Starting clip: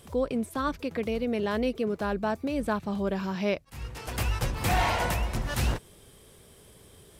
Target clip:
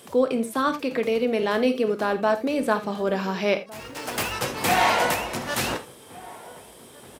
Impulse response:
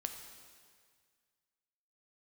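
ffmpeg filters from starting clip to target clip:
-filter_complex "[0:a]highpass=250,asettb=1/sr,asplit=3[a][b][c];[a]atrim=end=3.694[d];[b]atrim=start=3.69:end=4.33,asetpts=PTS-STARTPTS,afade=t=in:d=0.004:c=qsin,afade=t=out:st=0.636:d=0.004:c=qsin,acrusher=bits=4:mode=log:mix=0:aa=0.000001[e];[c]atrim=start=4.326[f];[d][e]acrossfade=d=0.004:c1=hsin:c2=qsin[g];[g][f]acrossfade=d=0.004:c1=qsin:c2=hsin,asplit=2[h][i];[i]adelay=1458,volume=-19dB,highshelf=f=4k:g=-32.8[j];[h][j]amix=inputs=2:normalize=0[k];[1:a]atrim=start_sample=2205,atrim=end_sample=3969[l];[k][l]afir=irnorm=-1:irlink=0,volume=8.5dB"

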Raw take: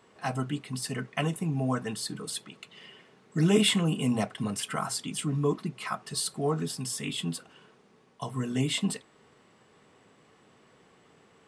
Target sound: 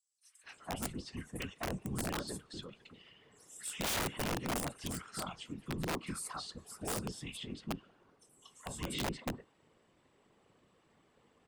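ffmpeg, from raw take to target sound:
-filter_complex "[0:a]afftfilt=real='hypot(re,im)*cos(2*PI*random(0))':imag='hypot(re,im)*sin(2*PI*random(1))':win_size=512:overlap=0.75,acrossover=split=1600|5900[a][b][c];[b]adelay=230[d];[a]adelay=440[e];[e][d][c]amix=inputs=3:normalize=0,aeval=exprs='(mod(22.4*val(0)+1,2)-1)/22.4':c=same,volume=-2.5dB"

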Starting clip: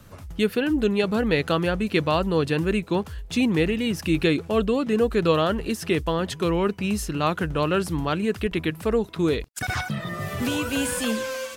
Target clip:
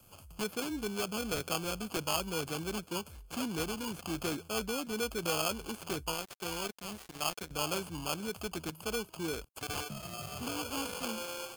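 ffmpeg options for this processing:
-filter_complex "[0:a]acrossover=split=110|470|7400[a][b][c][d];[c]acrusher=samples=23:mix=1:aa=0.000001[e];[d]acompressor=threshold=-55dB:ratio=6[f];[a][b][e][f]amix=inputs=4:normalize=0,asoftclip=type=tanh:threshold=-13dB,tiltshelf=f=1.1k:g=-7.5,asettb=1/sr,asplit=3[g][h][i];[g]atrim=end=6.144[j];[h]atrim=start=6.14:end=7.51,asetpts=PTS-STARTPTS,afade=t=in:d=0.004:c=qsin,afade=t=out:st=1.366:d=0.004:c=qsin,aeval=exprs='sgn(val(0))*max(abs(val(0))-0.0178,0)':c=same[k];[i]atrim=start=7.506[l];[j][k]acrossfade=d=0.004:c1=hsin:c2=qsin[m];[m][l]acrossfade=d=0.004:c1=qsin:c2=hsin,volume=-8dB"

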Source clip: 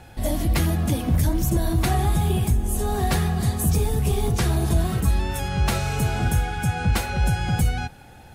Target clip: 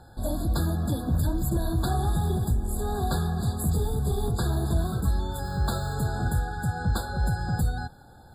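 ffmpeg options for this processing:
-filter_complex "[0:a]asettb=1/sr,asplit=3[a][b][c];[a]atrim=end=2.004[d];[b]atrim=start=2:end=2.81,asetpts=PTS-STARTPTS,afade=t=in:d=0.004:c=qsin,afade=t=out:st=0.806:d=0.004:c=qsin,aeval=exprs='0.282*(cos(1*acos(clip(val(0)/0.282,-1,1)))-cos(1*PI/2))+0.00631*(cos(8*acos(clip(val(0)/0.282,-1,1)))-cos(8*PI/2))':c=same[e];[c]atrim=start=2.806[f];[d][e]acrossfade=d=0.004:c1=hsin:c2=qsin[g];[g][f]acrossfade=d=0.004:c1=qsin:c2=hsin,asplit=3[h][i][j];[h]afade=t=out:st=5.43:d=0.02[k];[i]aeval=exprs='val(0)*gte(abs(val(0)),0.02)':c=same,afade=t=in:st=5.43:d=0.02,afade=t=out:st=5.93:d=0.02[l];[j]afade=t=in:st=5.93:d=0.02[m];[k][l][m]amix=inputs=3:normalize=0,afftfilt=real='re*eq(mod(floor(b*sr/1024/1700),2),0)':imag='im*eq(mod(floor(b*sr/1024/1700),2),0)':win_size=1024:overlap=0.75,volume=-4.5dB"

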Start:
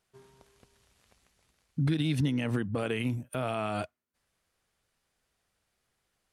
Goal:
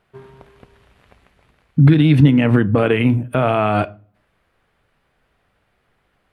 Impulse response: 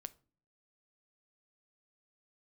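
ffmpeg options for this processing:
-filter_complex "[0:a]asplit=2[a][b];[1:a]atrim=start_sample=2205,lowpass=2.8k[c];[b][c]afir=irnorm=-1:irlink=0,volume=17.5dB[d];[a][d]amix=inputs=2:normalize=0,volume=1.5dB"

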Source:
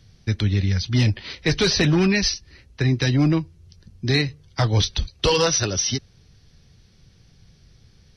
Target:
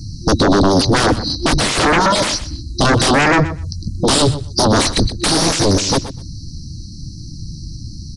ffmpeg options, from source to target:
-af "afftfilt=real='re*(1-between(b*sr/4096,350,3900))':imag='im*(1-between(b*sr/4096,350,3900))':win_size=4096:overlap=0.75,aeval=exprs='0.335*sin(PI/2*8.91*val(0)/0.335)':c=same,equalizer=f=290:t=o:w=0.37:g=5,aresample=22050,aresample=44100,aecho=1:1:124|248:0.2|0.0299,adynamicequalizer=threshold=0.0316:dfrequency=3800:dqfactor=0.7:tfrequency=3800:tqfactor=0.7:attack=5:release=100:ratio=0.375:range=4:mode=cutabove:tftype=highshelf"

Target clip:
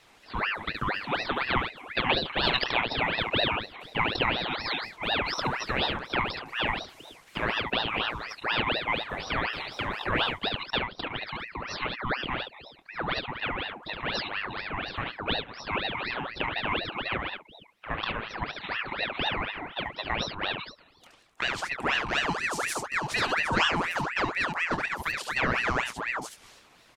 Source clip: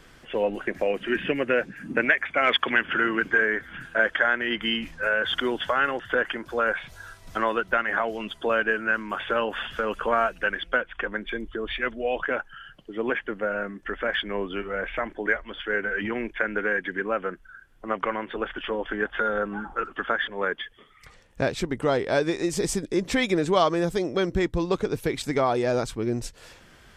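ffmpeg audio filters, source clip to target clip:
-af "highpass=160,aecho=1:1:24|71:0.335|0.596,aeval=exprs='val(0)*sin(2*PI*1400*n/s+1400*0.65/4.1*sin(2*PI*4.1*n/s))':c=same,volume=-2.5dB"

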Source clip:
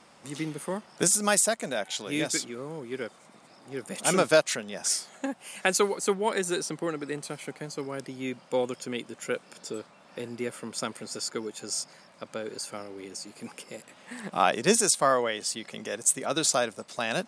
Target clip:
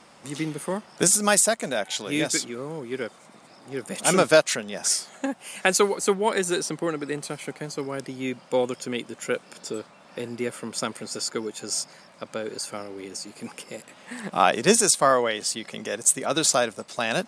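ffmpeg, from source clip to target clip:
-af "volume=4dB" -ar 44100 -c:a aac -b:a 128k

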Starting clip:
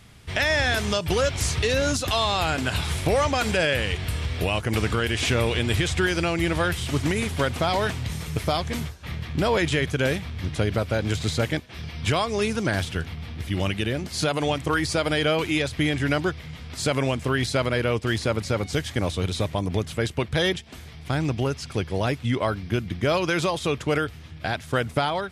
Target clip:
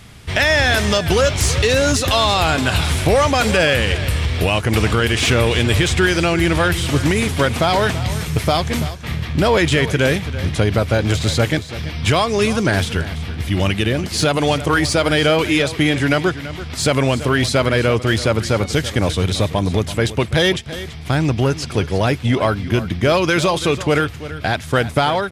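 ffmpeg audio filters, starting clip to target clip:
-filter_complex "[0:a]asettb=1/sr,asplit=3[a][b][c];[a]atrim=end=15.604[d];[b]atrim=start=15.6:end=16.49,asetpts=PTS-STARTPTS,afade=t=in:d=0.004:c=qsin,afade=t=out:st=0.886:d=0.004:c=qsin,highpass=110[e];[c]atrim=start=16.486[f];[d][e]acrossfade=d=0.004:c1=hsin:c2=qsin[g];[g][f]acrossfade=d=0.004:c1=qsin:c2=hsin,asplit=2[h][i];[i]asoftclip=type=hard:threshold=-25dB,volume=-7dB[j];[h][j]amix=inputs=2:normalize=0,aecho=1:1:334:0.188,volume=5.5dB"

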